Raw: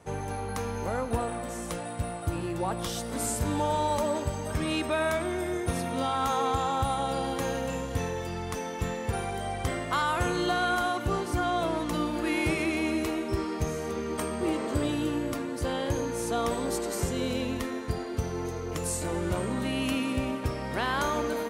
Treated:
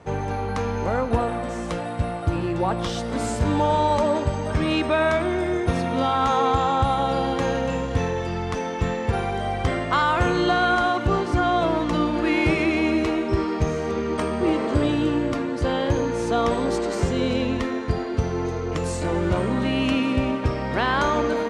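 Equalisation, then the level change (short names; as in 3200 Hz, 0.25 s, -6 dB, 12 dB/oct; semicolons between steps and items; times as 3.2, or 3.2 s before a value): air absorption 110 m; +7.5 dB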